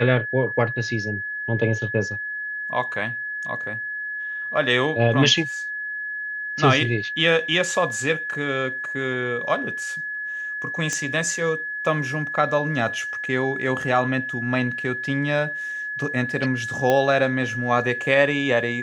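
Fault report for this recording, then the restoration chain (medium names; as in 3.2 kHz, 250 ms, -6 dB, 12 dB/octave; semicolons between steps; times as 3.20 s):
whine 1.7 kHz -27 dBFS
10.93 s: pop -13 dBFS
16.90 s: pop -8 dBFS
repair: de-click; band-stop 1.7 kHz, Q 30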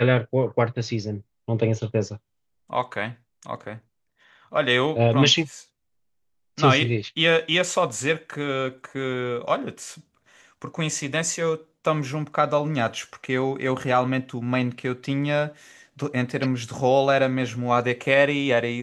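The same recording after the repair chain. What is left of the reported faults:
10.93 s: pop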